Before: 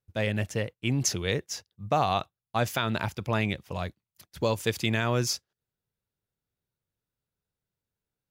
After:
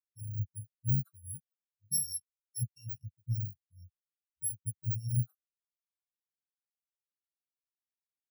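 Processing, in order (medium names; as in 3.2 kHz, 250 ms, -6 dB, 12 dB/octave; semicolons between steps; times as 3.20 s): bit-reversed sample order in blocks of 128 samples; spectral contrast expander 4:1; trim -6.5 dB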